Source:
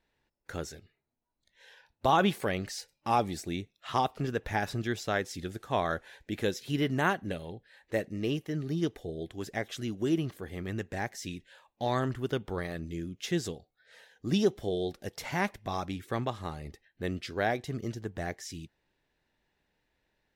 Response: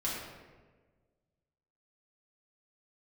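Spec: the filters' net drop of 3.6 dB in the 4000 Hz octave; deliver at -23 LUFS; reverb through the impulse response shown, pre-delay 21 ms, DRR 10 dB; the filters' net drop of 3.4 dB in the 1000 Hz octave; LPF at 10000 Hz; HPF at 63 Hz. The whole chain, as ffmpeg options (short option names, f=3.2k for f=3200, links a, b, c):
-filter_complex "[0:a]highpass=63,lowpass=10k,equalizer=f=1k:t=o:g=-4.5,equalizer=f=4k:t=o:g=-4.5,asplit=2[a][b];[1:a]atrim=start_sample=2205,adelay=21[c];[b][c]afir=irnorm=-1:irlink=0,volume=-15dB[d];[a][d]amix=inputs=2:normalize=0,volume=11dB"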